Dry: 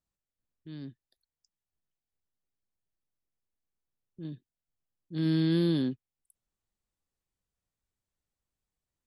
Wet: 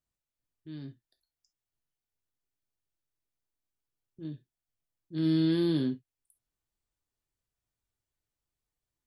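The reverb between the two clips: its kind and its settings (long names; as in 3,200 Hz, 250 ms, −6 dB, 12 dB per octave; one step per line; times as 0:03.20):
reverb whose tail is shaped and stops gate 90 ms falling, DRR 5 dB
level −2 dB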